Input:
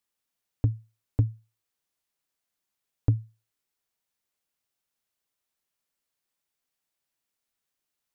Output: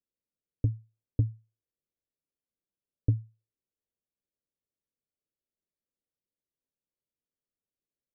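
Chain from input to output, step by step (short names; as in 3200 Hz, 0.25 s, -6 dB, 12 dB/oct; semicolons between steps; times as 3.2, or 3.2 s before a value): steep low-pass 590 Hz 48 dB/oct; gain -2.5 dB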